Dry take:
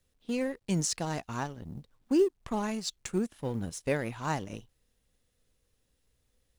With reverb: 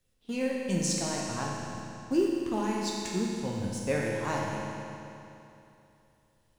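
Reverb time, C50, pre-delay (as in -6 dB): 2.9 s, -1.0 dB, 9 ms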